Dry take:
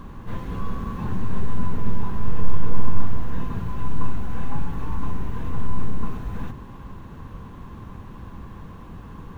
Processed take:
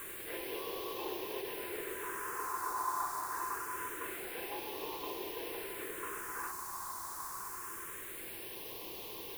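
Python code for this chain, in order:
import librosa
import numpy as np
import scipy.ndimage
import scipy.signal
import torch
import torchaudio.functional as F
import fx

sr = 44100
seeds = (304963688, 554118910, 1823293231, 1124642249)

y = scipy.signal.sosfilt(scipy.signal.butter(12, 340.0, 'highpass', fs=sr, output='sos'), x)
y = fx.quant_dither(y, sr, seeds[0], bits=8, dither='triangular')
y = fx.phaser_stages(y, sr, stages=4, low_hz=470.0, high_hz=1400.0, hz=0.25, feedback_pct=30)
y = fx.attack_slew(y, sr, db_per_s=110.0)
y = y * 10.0 ** (3.5 / 20.0)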